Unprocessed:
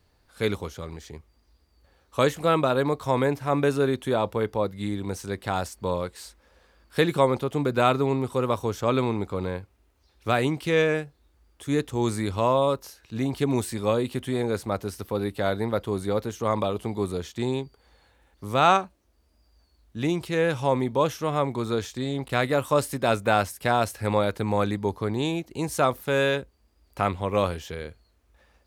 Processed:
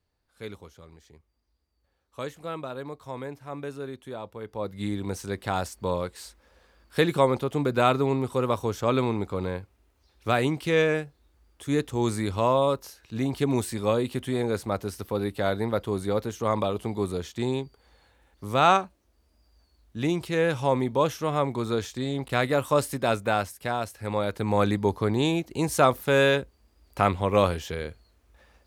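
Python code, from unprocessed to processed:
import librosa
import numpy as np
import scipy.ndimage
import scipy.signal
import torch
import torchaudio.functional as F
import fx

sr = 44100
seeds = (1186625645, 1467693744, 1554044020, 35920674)

y = fx.gain(x, sr, db=fx.line((4.4, -13.0), (4.8, -0.5), (22.91, -0.5), (23.94, -7.5), (24.68, 2.5)))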